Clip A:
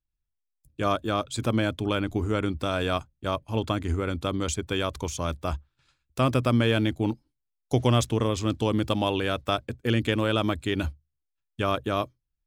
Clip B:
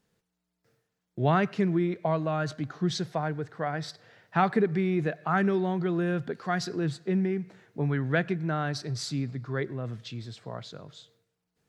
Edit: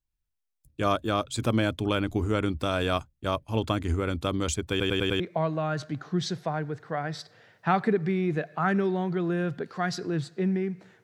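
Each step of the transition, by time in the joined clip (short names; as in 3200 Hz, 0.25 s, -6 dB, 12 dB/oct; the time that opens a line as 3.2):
clip A
4.7 stutter in place 0.10 s, 5 plays
5.2 switch to clip B from 1.89 s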